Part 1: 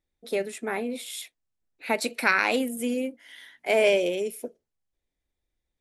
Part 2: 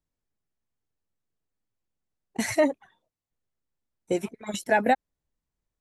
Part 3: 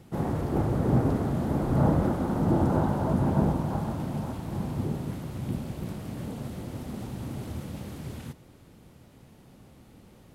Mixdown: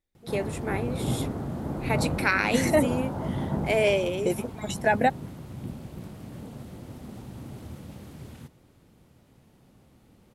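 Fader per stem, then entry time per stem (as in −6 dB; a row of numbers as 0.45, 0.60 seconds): −2.0, −0.5, −5.0 decibels; 0.00, 0.15, 0.15 seconds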